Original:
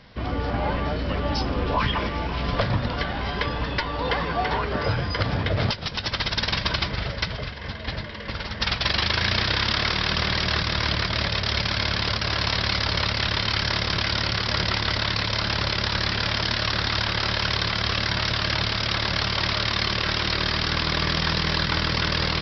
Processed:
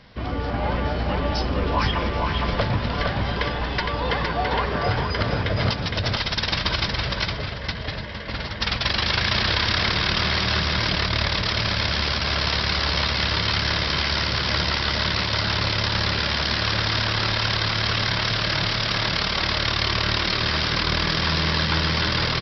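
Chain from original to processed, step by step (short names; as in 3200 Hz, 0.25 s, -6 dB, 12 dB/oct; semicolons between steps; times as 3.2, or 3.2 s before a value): echo 0.462 s -3.5 dB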